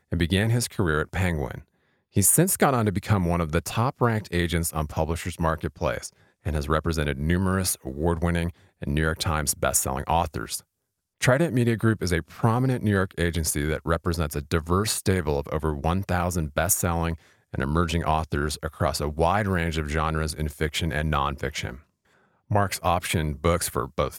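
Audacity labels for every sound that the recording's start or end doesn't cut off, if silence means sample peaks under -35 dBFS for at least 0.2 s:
2.160000	6.070000	sound
6.460000	8.500000	sound
8.820000	10.590000	sound
11.210000	17.150000	sound
17.540000	21.760000	sound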